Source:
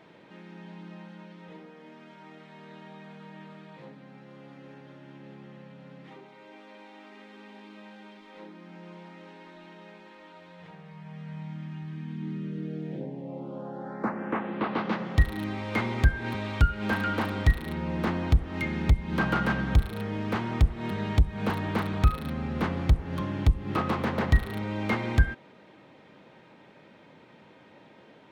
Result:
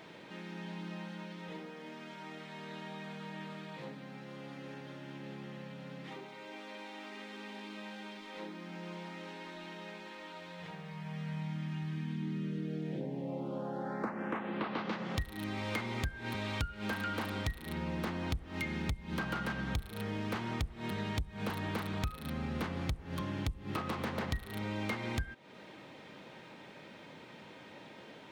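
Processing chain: high shelf 2900 Hz +9 dB; compressor 6:1, threshold -35 dBFS, peak gain reduction 19 dB; gain +1 dB

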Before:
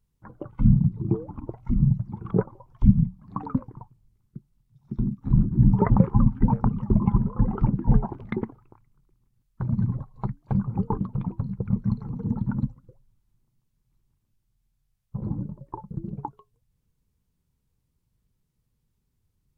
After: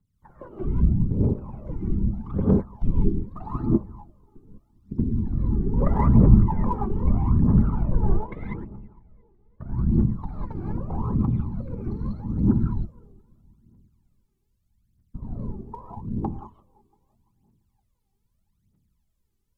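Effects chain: whisperiser; 7.67–9.65 air absorption 300 m; dark delay 0.341 s, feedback 46%, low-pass 1100 Hz, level -23 dB; non-linear reverb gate 0.22 s rising, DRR -5 dB; phaser 0.8 Hz, delay 2.7 ms, feedback 71%; gain -9.5 dB

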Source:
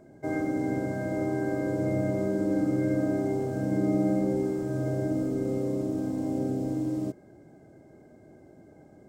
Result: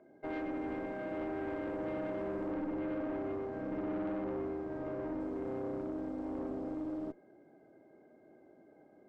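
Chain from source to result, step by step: three-band isolator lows -18 dB, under 230 Hz, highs -21 dB, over 3500 Hz; tube stage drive 29 dB, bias 0.5; 2.51–5.2 air absorption 56 m; gain -3.5 dB

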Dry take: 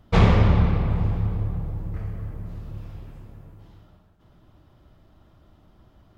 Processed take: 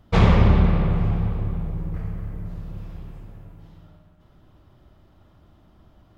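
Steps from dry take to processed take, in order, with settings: spring tank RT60 2.6 s, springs 44/57 ms, chirp 70 ms, DRR 6.5 dB

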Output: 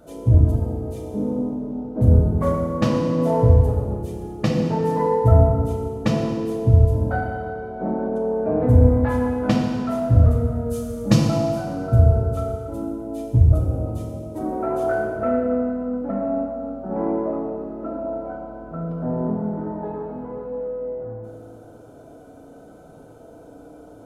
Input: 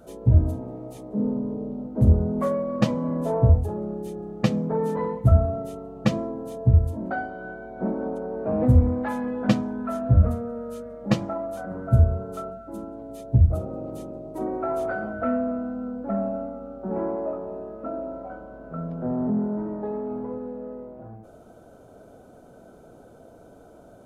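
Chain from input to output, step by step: 10.66–11.24 tone controls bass +8 dB, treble +11 dB; FDN reverb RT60 1.8 s, low-frequency decay 1×, high-frequency decay 0.9×, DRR -1 dB

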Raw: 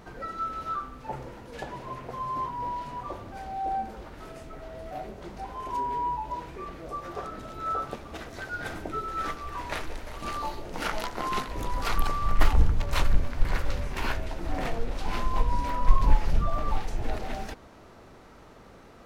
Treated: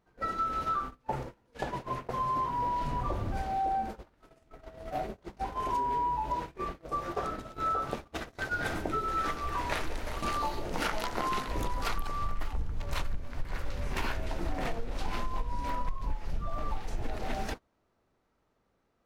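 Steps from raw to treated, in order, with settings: 2.81–3.42 low shelf 160 Hz +12 dB; gate -38 dBFS, range -28 dB; compressor 12:1, threshold -31 dBFS, peak gain reduction 22.5 dB; gain +4 dB

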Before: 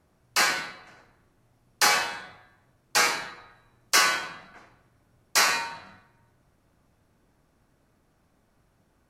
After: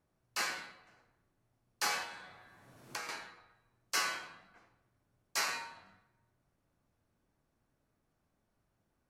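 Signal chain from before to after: flange 0.76 Hz, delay 6.7 ms, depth 3.4 ms, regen -77%; 2.02–3.09 three-band squash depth 100%; gain -8.5 dB

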